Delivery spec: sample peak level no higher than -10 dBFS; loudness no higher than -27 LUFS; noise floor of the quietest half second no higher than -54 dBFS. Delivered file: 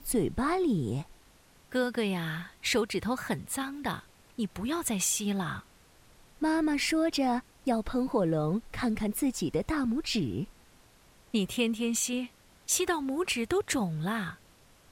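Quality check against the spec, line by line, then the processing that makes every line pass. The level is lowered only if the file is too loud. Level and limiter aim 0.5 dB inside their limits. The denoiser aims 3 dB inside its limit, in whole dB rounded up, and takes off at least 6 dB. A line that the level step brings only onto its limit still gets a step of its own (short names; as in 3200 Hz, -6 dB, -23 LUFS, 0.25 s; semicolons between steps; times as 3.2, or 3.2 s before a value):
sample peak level -14.5 dBFS: OK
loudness -30.5 LUFS: OK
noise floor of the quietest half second -59 dBFS: OK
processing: none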